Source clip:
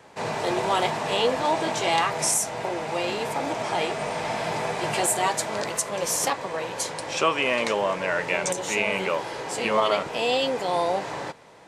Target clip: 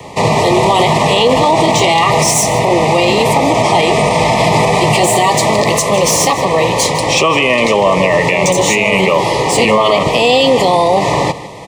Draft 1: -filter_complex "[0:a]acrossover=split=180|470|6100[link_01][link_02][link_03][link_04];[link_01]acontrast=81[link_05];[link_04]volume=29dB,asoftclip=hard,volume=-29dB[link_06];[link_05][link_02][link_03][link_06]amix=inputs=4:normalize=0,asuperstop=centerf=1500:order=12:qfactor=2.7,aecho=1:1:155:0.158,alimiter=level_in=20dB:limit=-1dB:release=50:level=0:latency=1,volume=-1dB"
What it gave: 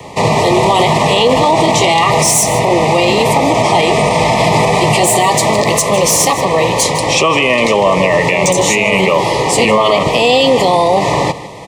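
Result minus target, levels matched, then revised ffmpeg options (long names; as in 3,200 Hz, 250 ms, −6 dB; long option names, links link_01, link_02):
gain into a clipping stage and back: distortion −5 dB
-filter_complex "[0:a]acrossover=split=180|470|6100[link_01][link_02][link_03][link_04];[link_01]acontrast=81[link_05];[link_04]volume=37.5dB,asoftclip=hard,volume=-37.5dB[link_06];[link_05][link_02][link_03][link_06]amix=inputs=4:normalize=0,asuperstop=centerf=1500:order=12:qfactor=2.7,aecho=1:1:155:0.158,alimiter=level_in=20dB:limit=-1dB:release=50:level=0:latency=1,volume=-1dB"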